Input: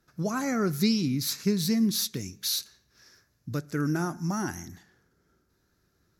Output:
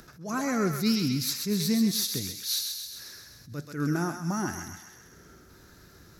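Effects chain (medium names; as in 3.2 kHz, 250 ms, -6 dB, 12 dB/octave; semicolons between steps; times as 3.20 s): upward compressor, threshold -38 dBFS; thinning echo 131 ms, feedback 61%, high-pass 850 Hz, level -5 dB; attacks held to a fixed rise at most 140 dB/s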